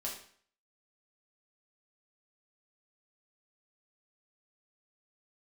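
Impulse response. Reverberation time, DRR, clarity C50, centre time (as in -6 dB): 0.55 s, -4.0 dB, 5.5 dB, 30 ms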